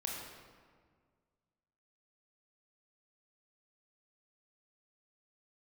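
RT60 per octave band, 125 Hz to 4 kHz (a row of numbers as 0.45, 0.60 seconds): 2.2, 2.1, 1.8, 1.7, 1.4, 1.1 seconds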